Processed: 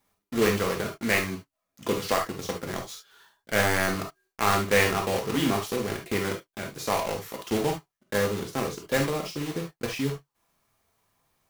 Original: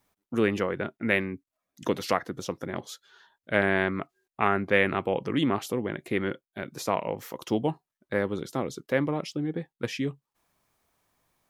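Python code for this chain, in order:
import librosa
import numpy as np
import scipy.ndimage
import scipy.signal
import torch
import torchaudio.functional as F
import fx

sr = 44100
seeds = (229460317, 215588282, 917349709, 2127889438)

y = fx.block_float(x, sr, bits=3)
y = fx.rev_gated(y, sr, seeds[0], gate_ms=90, shape='flat', drr_db=1.5)
y = F.gain(torch.from_numpy(y), -1.5).numpy()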